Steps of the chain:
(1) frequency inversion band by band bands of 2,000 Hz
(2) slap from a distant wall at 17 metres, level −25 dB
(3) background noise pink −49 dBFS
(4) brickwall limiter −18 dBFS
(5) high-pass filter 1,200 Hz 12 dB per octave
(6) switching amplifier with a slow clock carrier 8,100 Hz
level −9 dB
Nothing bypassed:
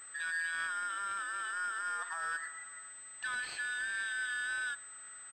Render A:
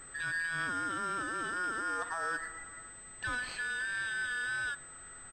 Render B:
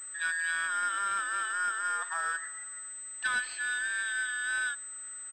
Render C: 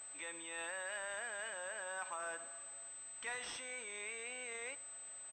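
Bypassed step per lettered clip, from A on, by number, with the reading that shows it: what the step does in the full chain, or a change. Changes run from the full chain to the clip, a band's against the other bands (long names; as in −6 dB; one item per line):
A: 5, change in momentary loudness spread +1 LU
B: 4, average gain reduction 3.0 dB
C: 1, 500 Hz band +20.0 dB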